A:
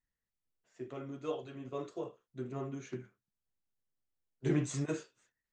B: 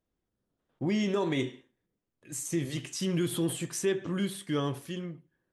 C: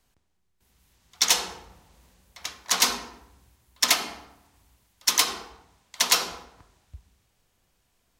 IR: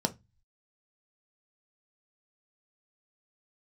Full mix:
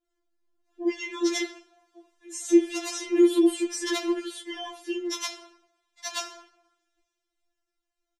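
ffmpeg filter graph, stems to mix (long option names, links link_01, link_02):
-filter_complex "[0:a]acompressor=threshold=-43dB:ratio=6,volume=-13dB[link_01];[1:a]volume=2.5dB[link_02];[2:a]adelay=50,volume=-13dB,asplit=2[link_03][link_04];[link_04]volume=-18.5dB[link_05];[3:a]atrim=start_sample=2205[link_06];[link_05][link_06]afir=irnorm=-1:irlink=0[link_07];[link_01][link_02][link_03][link_07]amix=inputs=4:normalize=0,lowpass=7500,dynaudnorm=framelen=240:gausssize=11:maxgain=4dB,afftfilt=real='re*4*eq(mod(b,16),0)':imag='im*4*eq(mod(b,16),0)':win_size=2048:overlap=0.75"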